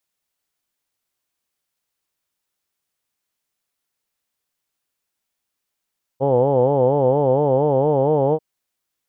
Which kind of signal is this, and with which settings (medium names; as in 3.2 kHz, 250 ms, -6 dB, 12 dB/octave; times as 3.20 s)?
formant vowel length 2.19 s, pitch 130 Hz, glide +2 st, vibrato 4.3 Hz, vibrato depth 1.35 st, F1 500 Hz, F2 860 Hz, F3 3.1 kHz